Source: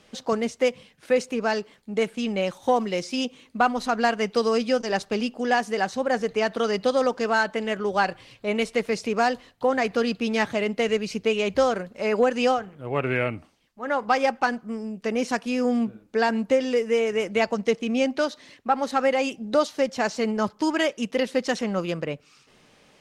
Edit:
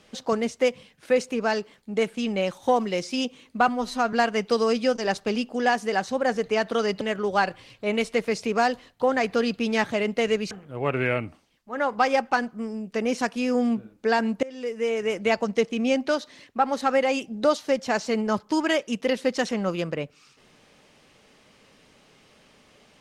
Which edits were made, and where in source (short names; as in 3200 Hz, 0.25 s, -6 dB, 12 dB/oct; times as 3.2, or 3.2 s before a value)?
3.68–3.98 stretch 1.5×
6.86–7.62 cut
11.12–12.61 cut
16.53–17.5 fade in equal-power, from -23 dB